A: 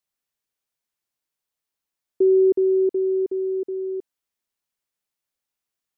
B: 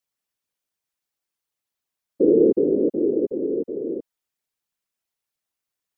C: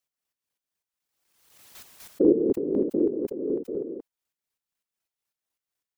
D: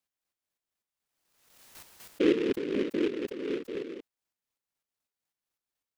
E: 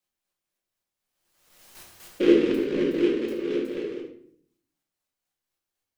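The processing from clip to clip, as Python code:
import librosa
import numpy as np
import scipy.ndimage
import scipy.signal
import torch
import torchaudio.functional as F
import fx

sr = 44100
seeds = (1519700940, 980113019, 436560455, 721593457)

y1 = fx.whisperise(x, sr, seeds[0])
y2 = fx.chopper(y1, sr, hz=4.0, depth_pct=60, duty_pct=30)
y2 = fx.dynamic_eq(y2, sr, hz=510.0, q=2.2, threshold_db=-32.0, ratio=4.0, max_db=-4)
y2 = fx.pre_swell(y2, sr, db_per_s=57.0)
y3 = fx.high_shelf(y2, sr, hz=10000.0, db=7.0)
y3 = fx.noise_mod_delay(y3, sr, seeds[1], noise_hz=2100.0, depth_ms=0.07)
y3 = y3 * 10.0 ** (-5.0 / 20.0)
y4 = y3 + 10.0 ** (-11.0 / 20.0) * np.pad(y3, (int(74 * sr / 1000.0), 0))[:len(y3)]
y4 = fx.room_shoebox(y4, sr, seeds[2], volume_m3=93.0, walls='mixed', distance_m=0.95)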